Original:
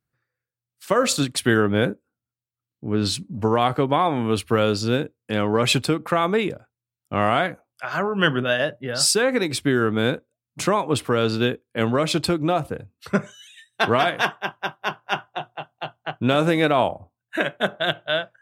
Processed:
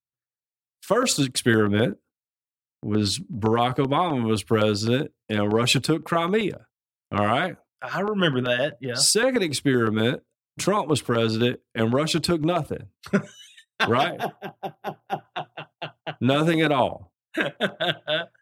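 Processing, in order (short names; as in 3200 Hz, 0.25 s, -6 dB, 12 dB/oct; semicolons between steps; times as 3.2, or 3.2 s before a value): spectral gain 14.08–15.25, 880–10000 Hz -12 dB; LFO notch saw down 7.8 Hz 430–2800 Hz; gate -48 dBFS, range -22 dB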